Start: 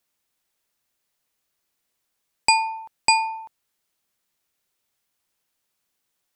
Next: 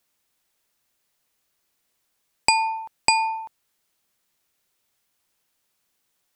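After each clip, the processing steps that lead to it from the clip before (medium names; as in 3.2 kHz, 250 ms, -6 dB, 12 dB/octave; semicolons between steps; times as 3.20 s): compression, threshold -18 dBFS, peak gain reduction 6 dB; trim +3.5 dB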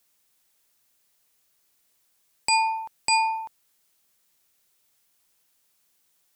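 treble shelf 4.7 kHz +6.5 dB; peak limiter -10.5 dBFS, peak gain reduction 11 dB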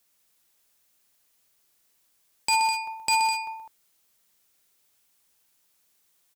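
wavefolder -14 dBFS; multi-tap echo 61/125/204 ms -13.5/-7.5/-8 dB; trim -1 dB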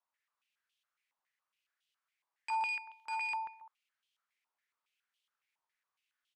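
step-sequenced band-pass 7.2 Hz 950–3100 Hz; trim -2.5 dB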